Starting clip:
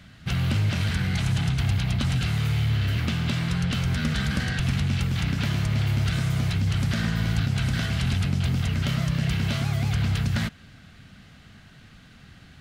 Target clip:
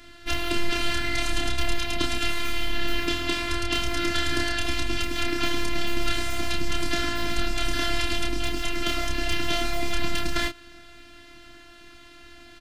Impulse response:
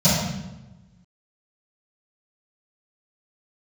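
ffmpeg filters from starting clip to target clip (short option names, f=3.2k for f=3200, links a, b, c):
-filter_complex "[0:a]highpass=53,asplit=2[a][b];[b]adelay=29,volume=-4dB[c];[a][c]amix=inputs=2:normalize=0,afftfilt=real='hypot(re,im)*cos(PI*b)':imag='0':win_size=512:overlap=0.75,volume=7dB"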